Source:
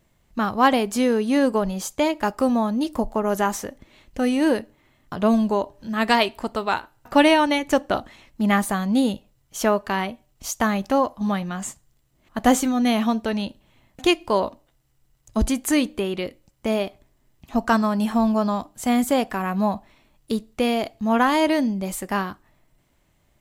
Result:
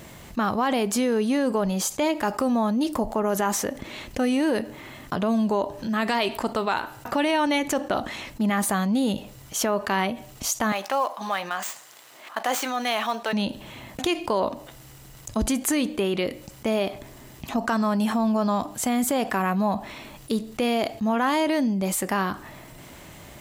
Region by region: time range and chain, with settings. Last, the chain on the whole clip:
10.72–13.33 switching dead time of 0.054 ms + HPF 730 Hz + high shelf 4900 Hz -5 dB
whole clip: HPF 120 Hz 6 dB/oct; limiter -14.5 dBFS; fast leveller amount 50%; gain -1 dB

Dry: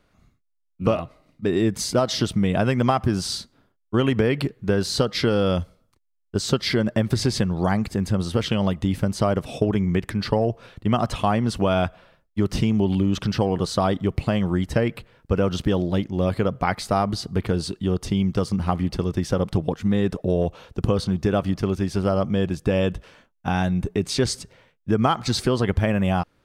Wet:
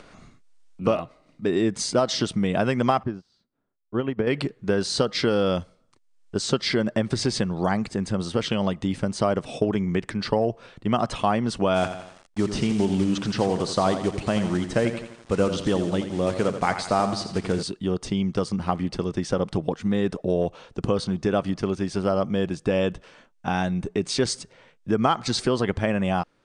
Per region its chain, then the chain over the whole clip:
3.03–4.27 tape spacing loss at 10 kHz 26 dB + upward expander 2.5:1, over -35 dBFS
11.74–17.63 block floating point 5-bit + lo-fi delay 85 ms, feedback 55%, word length 7-bit, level -9.5 dB
whole clip: Chebyshev low-pass 9200 Hz, order 5; bell 62 Hz -12.5 dB 1.8 oct; upward compressor, threshold -35 dBFS

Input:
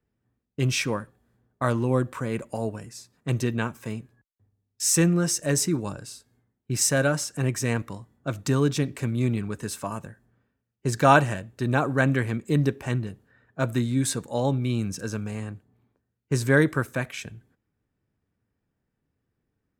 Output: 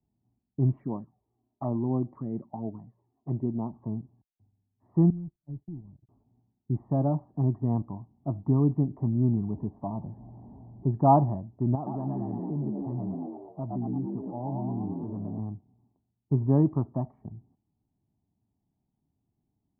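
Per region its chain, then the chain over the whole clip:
0.77–3.73 envelope flanger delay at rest 3.3 ms, full sweep at -22 dBFS + weighting filter D
5.1–6.09 zero-crossing step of -26.5 dBFS + passive tone stack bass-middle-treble 10-0-1 + gate -41 dBFS, range -38 dB
9.5–10.91 zero-crossing step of -40 dBFS + bell 1300 Hz -10.5 dB 0.55 oct
11.75–15.39 frequency-shifting echo 0.113 s, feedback 57%, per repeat +66 Hz, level -3.5 dB + compressor 2.5:1, threshold -31 dBFS
whole clip: steep low-pass 820 Hz 36 dB/oct; low shelf 110 Hz -10 dB; comb 1 ms, depth 85%

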